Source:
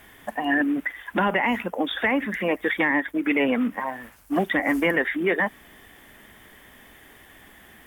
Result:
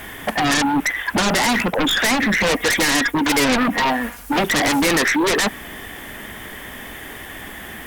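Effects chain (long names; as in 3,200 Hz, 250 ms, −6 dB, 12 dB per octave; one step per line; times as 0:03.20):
stylus tracing distortion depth 0.04 ms
0:02.42–0:04.33: comb filter 4.2 ms, depth 61%
in parallel at −8 dB: sine wavefolder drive 18 dB, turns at −9 dBFS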